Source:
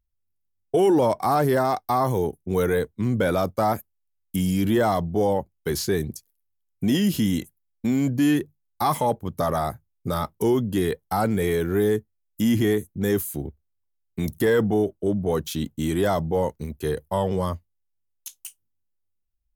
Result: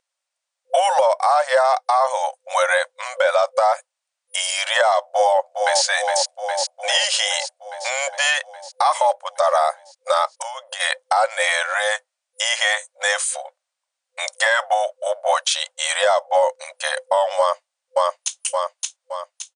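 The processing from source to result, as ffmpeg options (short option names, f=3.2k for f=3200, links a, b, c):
-filter_complex "[0:a]asplit=2[a][b];[b]afade=t=in:st=5.02:d=0.01,afade=t=out:st=5.84:d=0.01,aecho=0:1:410|820|1230|1640|2050|2460|2870|3280|3690|4100|4510:0.421697|0.295188|0.206631|0.144642|0.101249|0.0708745|0.0496122|0.0347285|0.02431|0.017017|0.0119119[c];[a][c]amix=inputs=2:normalize=0,asplit=3[d][e][f];[d]afade=t=out:st=10.37:d=0.02[g];[e]acompressor=threshold=-29dB:ratio=12:attack=3.2:release=140:knee=1:detection=peak,afade=t=in:st=10.37:d=0.02,afade=t=out:st=10.79:d=0.02[h];[f]afade=t=in:st=10.79:d=0.02[i];[g][h][i]amix=inputs=3:normalize=0,asplit=2[j][k];[k]afade=t=in:st=17.39:d=0.01,afade=t=out:st=18.39:d=0.01,aecho=0:1:570|1140|1710|2280|2850|3420:0.841395|0.378628|0.170383|0.0766721|0.0345025|0.0155261[l];[j][l]amix=inputs=2:normalize=0,afftfilt=real='re*between(b*sr/4096,510,9700)':imag='im*between(b*sr/4096,510,9700)':win_size=4096:overlap=0.75,acompressor=threshold=-29dB:ratio=12,alimiter=level_in=22.5dB:limit=-1dB:release=50:level=0:latency=1,volume=-6dB"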